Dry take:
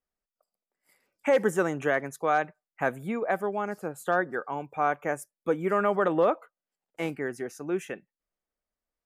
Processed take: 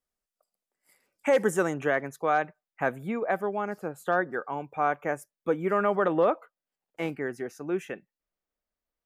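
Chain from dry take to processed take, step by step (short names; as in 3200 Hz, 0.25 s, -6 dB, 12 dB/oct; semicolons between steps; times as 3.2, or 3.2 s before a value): bell 9000 Hz +4 dB 1.3 oct, from 1.74 s -6 dB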